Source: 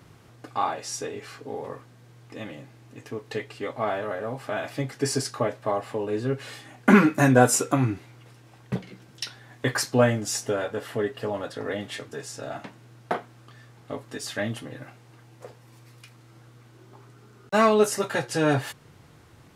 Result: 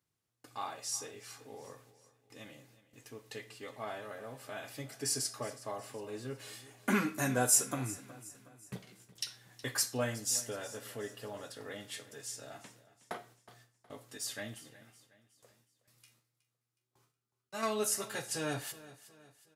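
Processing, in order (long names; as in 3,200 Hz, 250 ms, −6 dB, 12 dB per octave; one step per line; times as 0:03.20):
first-order pre-emphasis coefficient 0.8
noise gate with hold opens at −50 dBFS
0:14.54–0:17.63: tuned comb filter 76 Hz, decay 0.23 s, harmonics all, mix 80%
repeating echo 367 ms, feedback 45%, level −18 dB
convolution reverb RT60 0.40 s, pre-delay 5 ms, DRR 14 dB
level −1.5 dB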